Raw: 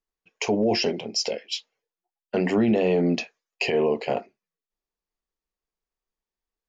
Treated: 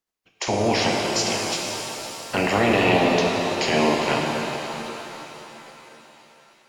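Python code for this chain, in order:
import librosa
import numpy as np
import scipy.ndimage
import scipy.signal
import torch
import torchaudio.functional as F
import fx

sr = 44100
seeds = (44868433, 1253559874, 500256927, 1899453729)

y = fx.spec_clip(x, sr, under_db=21)
y = fx.echo_thinned(y, sr, ms=516, feedback_pct=56, hz=410.0, wet_db=-18.0)
y = fx.rev_shimmer(y, sr, seeds[0], rt60_s=3.6, semitones=7, shimmer_db=-8, drr_db=-0.5)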